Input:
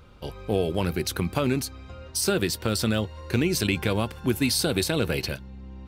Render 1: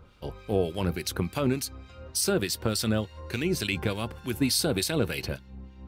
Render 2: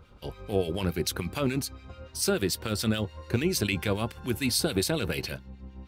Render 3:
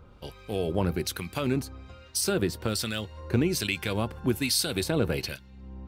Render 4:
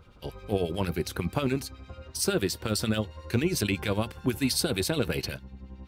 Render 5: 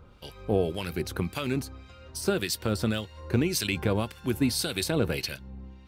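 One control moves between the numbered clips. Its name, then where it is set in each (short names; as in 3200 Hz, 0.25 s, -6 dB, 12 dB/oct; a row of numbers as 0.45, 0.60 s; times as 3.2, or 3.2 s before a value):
harmonic tremolo, rate: 3.4, 6.9, 1.2, 11, 1.8 Hz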